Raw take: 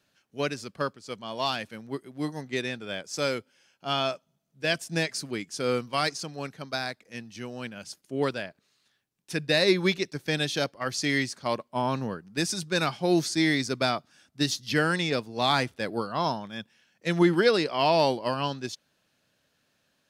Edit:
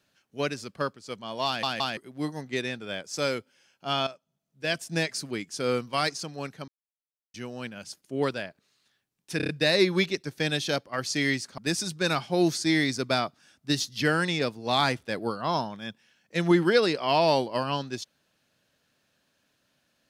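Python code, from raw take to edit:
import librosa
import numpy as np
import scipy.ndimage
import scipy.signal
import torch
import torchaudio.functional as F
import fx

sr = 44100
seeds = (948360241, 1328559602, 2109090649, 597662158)

y = fx.edit(x, sr, fx.stutter_over(start_s=1.46, slice_s=0.17, count=3),
    fx.fade_in_from(start_s=4.07, length_s=0.84, floor_db=-13.0),
    fx.silence(start_s=6.68, length_s=0.66),
    fx.stutter(start_s=9.37, slice_s=0.03, count=5),
    fx.cut(start_s=11.46, length_s=0.83), tone=tone)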